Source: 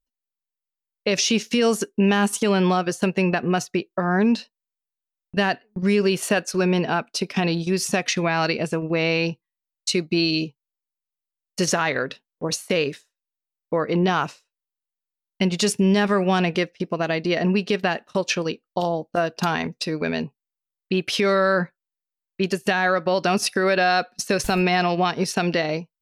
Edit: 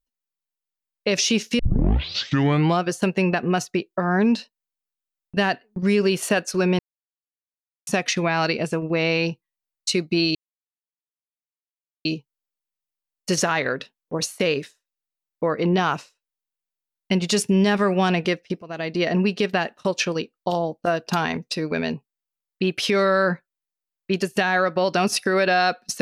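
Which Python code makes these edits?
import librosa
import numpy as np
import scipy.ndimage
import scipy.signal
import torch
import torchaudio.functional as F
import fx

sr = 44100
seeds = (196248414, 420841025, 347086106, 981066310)

y = fx.edit(x, sr, fx.tape_start(start_s=1.59, length_s=1.22),
    fx.silence(start_s=6.79, length_s=1.08),
    fx.insert_silence(at_s=10.35, length_s=1.7),
    fx.fade_in_from(start_s=16.92, length_s=0.39, floor_db=-17.5), tone=tone)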